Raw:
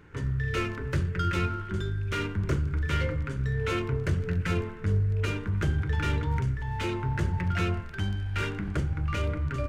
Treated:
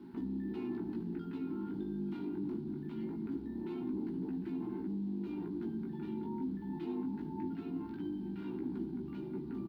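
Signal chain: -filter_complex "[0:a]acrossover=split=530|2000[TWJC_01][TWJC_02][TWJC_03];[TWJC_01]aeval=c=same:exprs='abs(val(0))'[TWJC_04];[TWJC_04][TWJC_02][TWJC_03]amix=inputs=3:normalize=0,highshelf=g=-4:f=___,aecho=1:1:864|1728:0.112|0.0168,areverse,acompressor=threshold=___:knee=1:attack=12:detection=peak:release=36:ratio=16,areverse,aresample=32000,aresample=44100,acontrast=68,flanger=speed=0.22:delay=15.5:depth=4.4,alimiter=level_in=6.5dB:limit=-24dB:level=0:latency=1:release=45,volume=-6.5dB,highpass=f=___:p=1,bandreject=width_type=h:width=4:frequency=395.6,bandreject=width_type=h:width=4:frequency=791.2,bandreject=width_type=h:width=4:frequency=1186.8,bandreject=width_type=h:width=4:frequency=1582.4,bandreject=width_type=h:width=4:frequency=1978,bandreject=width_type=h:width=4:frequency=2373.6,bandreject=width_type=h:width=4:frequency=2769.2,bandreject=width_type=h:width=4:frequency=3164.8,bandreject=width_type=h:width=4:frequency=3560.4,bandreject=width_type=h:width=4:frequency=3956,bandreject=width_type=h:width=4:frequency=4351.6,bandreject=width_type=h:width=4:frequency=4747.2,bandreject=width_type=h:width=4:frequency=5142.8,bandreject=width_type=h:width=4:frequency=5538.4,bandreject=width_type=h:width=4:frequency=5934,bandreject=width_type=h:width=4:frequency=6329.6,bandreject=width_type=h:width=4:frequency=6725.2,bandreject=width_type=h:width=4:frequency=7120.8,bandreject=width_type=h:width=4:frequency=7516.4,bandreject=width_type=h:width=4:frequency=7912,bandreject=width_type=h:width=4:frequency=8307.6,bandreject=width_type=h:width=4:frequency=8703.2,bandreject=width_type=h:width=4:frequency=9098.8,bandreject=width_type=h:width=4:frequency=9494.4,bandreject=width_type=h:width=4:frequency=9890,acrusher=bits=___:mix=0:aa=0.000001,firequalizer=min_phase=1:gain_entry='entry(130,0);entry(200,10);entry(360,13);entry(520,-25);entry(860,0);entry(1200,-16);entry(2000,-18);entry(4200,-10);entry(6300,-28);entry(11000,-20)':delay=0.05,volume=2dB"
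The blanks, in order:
2100, -38dB, 300, 9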